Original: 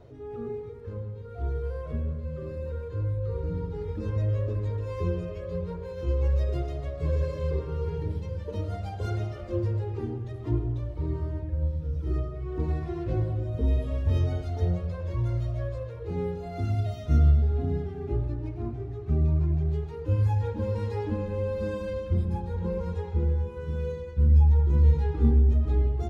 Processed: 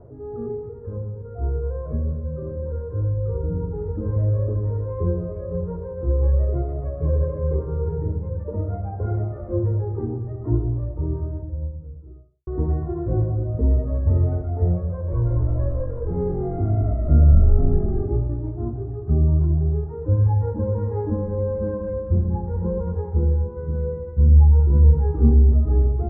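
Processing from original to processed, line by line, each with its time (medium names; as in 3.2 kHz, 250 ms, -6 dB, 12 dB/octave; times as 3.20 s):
10.70–12.47 s: studio fade out
14.90–18.08 s: frequency-shifting echo 211 ms, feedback 48%, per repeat -46 Hz, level -3 dB
whole clip: Bessel low-pass 870 Hz, order 8; trim +6 dB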